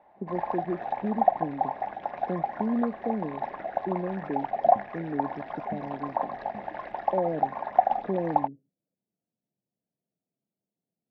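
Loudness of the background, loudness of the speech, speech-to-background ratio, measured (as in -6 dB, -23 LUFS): -30.5 LUFS, -33.5 LUFS, -3.0 dB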